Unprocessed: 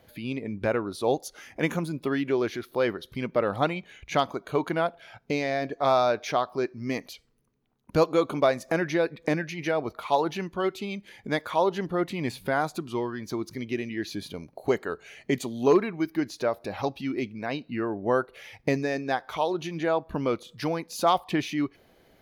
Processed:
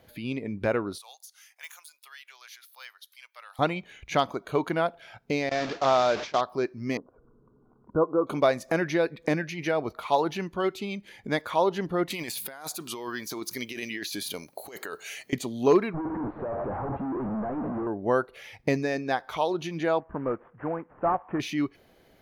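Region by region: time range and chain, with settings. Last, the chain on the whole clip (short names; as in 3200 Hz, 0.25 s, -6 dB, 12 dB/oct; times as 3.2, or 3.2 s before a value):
0.98–3.59 HPF 790 Hz 24 dB/oct + de-esser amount 90% + differentiator
5.49–6.41 delta modulation 32 kbps, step -27.5 dBFS + gate with hold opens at -19 dBFS, closes at -26 dBFS + low shelf 80 Hz -10 dB
6.97–8.27 rippled Chebyshev low-pass 1500 Hz, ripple 6 dB + upward compressor, threshold -44 dBFS
12.1–15.33 RIAA curve recording + negative-ratio compressor -36 dBFS
15.94–17.87 infinite clipping + inverse Chebyshev low-pass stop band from 5200 Hz, stop band 70 dB + doubler 23 ms -14 dB
20–21.4 CVSD 16 kbps + LPF 1500 Hz 24 dB/oct + low shelf 330 Hz -5.5 dB
whole clip: dry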